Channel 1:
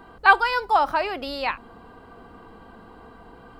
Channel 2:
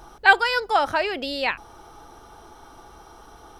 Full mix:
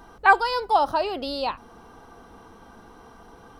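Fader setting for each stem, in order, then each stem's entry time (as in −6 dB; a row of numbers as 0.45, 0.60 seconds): −3.0, −7.5 decibels; 0.00, 0.00 seconds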